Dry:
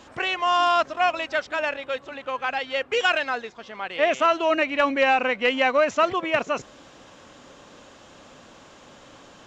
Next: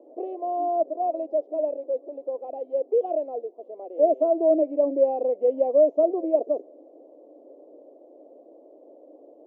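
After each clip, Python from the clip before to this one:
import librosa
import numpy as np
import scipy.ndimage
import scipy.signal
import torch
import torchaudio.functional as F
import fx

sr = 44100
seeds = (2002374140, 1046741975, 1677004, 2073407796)

y = scipy.signal.sosfilt(scipy.signal.ellip(3, 1.0, 50, [300.0, 660.0], 'bandpass', fs=sr, output='sos'), x)
y = F.gain(torch.from_numpy(y), 4.0).numpy()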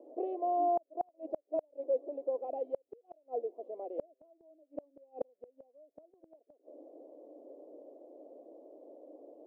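y = fx.gate_flip(x, sr, shuts_db=-19.0, range_db=-38)
y = F.gain(torch.from_numpy(y), -3.5).numpy()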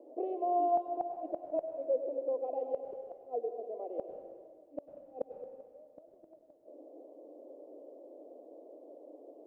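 y = fx.rev_plate(x, sr, seeds[0], rt60_s=1.8, hf_ratio=1.0, predelay_ms=85, drr_db=5.5)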